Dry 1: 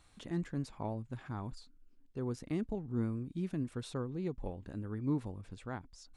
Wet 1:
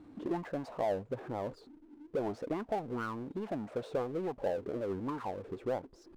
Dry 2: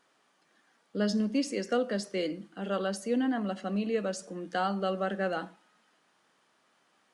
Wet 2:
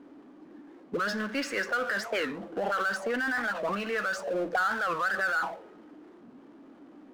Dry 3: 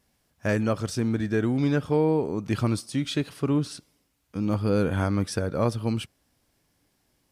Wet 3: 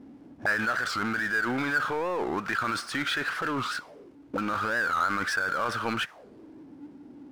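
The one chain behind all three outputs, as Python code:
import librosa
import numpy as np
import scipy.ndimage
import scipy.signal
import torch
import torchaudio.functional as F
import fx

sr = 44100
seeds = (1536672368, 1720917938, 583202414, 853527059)

p1 = fx.auto_wah(x, sr, base_hz=280.0, top_hz=1500.0, q=5.8, full_db=-28.0, direction='up')
p2 = fx.power_curve(p1, sr, exponent=0.7)
p3 = fx.over_compress(p2, sr, threshold_db=-45.0, ratio=-0.5)
p4 = p2 + F.gain(torch.from_numpy(p3), 0.0).numpy()
p5 = fx.record_warp(p4, sr, rpm=45.0, depth_cents=250.0)
y = F.gain(torch.from_numpy(p5), 9.0).numpy()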